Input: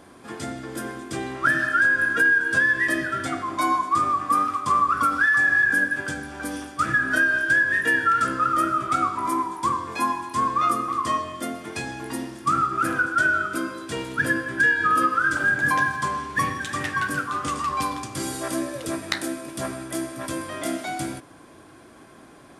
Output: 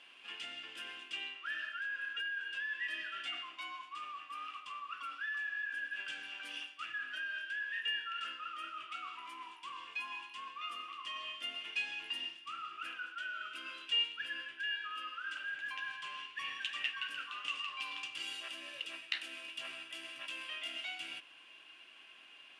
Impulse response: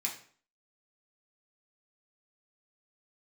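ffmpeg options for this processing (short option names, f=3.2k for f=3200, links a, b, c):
-af "areverse,acompressor=threshold=-31dB:ratio=4,areverse,bandpass=f=2.8k:t=q:w=16:csg=0,volume=16dB"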